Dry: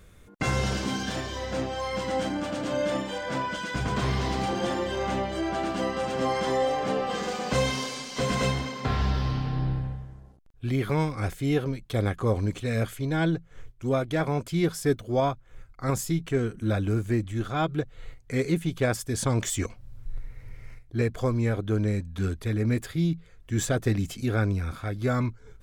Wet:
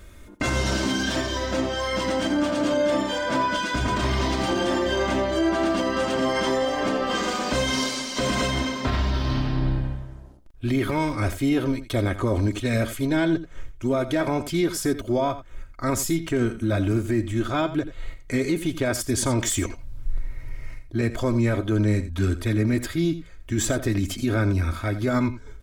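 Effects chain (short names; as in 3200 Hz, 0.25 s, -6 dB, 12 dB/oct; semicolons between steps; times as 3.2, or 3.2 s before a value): comb 3.2 ms, depth 57%; limiter -20 dBFS, peak gain reduction 8.5 dB; echo 85 ms -13.5 dB; gain +5.5 dB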